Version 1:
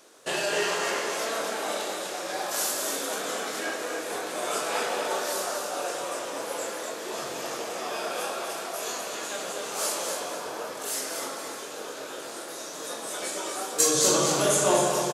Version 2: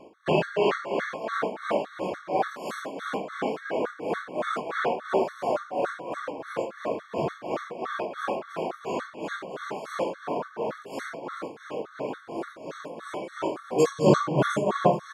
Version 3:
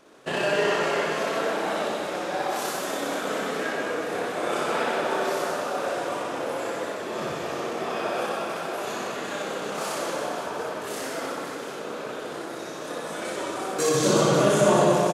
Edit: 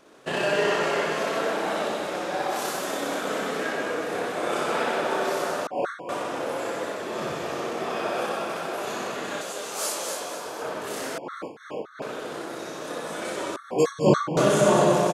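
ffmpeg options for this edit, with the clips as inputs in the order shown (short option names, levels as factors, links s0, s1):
-filter_complex "[1:a]asplit=3[s0][s1][s2];[2:a]asplit=5[s3][s4][s5][s6][s7];[s3]atrim=end=5.672[s8];[s0]atrim=start=5.668:end=6.092[s9];[s4]atrim=start=6.088:end=9.412[s10];[0:a]atrim=start=9.408:end=10.622[s11];[s5]atrim=start=10.618:end=11.182[s12];[s1]atrim=start=11.178:end=12.022[s13];[s6]atrim=start=12.018:end=13.562[s14];[s2]atrim=start=13.558:end=14.372[s15];[s7]atrim=start=14.368[s16];[s8][s9]acrossfade=d=0.004:c1=hsin:c2=hsin[s17];[s17][s10]acrossfade=d=0.004:c1=hsin:c2=hsin[s18];[s18][s11]acrossfade=d=0.004:c1=hsin:c2=hsin[s19];[s19][s12]acrossfade=d=0.004:c1=hsin:c2=hsin[s20];[s20][s13]acrossfade=d=0.004:c1=hsin:c2=hsin[s21];[s21][s14]acrossfade=d=0.004:c1=hsin:c2=hsin[s22];[s22][s15]acrossfade=d=0.004:c1=hsin:c2=hsin[s23];[s23][s16]acrossfade=d=0.004:c1=hsin:c2=hsin"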